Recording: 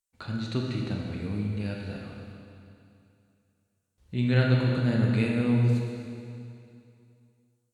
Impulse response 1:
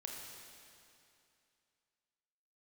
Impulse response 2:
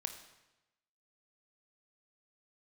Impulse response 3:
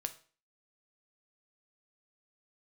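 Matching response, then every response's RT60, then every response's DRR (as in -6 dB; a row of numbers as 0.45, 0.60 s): 1; 2.6, 1.0, 0.40 s; -1.0, 6.5, 8.5 dB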